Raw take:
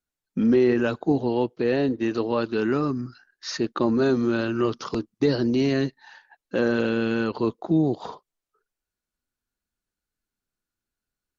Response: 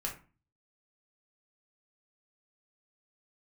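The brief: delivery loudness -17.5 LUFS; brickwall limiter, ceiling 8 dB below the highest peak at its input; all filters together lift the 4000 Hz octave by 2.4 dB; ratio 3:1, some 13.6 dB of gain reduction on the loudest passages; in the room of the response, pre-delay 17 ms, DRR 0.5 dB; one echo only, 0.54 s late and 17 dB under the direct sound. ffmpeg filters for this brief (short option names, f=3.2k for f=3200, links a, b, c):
-filter_complex "[0:a]equalizer=f=4k:t=o:g=3,acompressor=threshold=-35dB:ratio=3,alimiter=level_in=5dB:limit=-24dB:level=0:latency=1,volume=-5dB,aecho=1:1:540:0.141,asplit=2[a][b];[1:a]atrim=start_sample=2205,adelay=17[c];[b][c]afir=irnorm=-1:irlink=0,volume=-2.5dB[d];[a][d]amix=inputs=2:normalize=0,volume=19dB"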